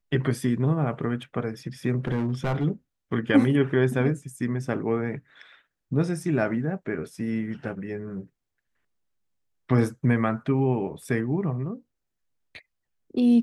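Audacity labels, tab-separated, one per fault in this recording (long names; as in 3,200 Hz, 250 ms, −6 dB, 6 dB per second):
2.070000	2.650000	clipping −21 dBFS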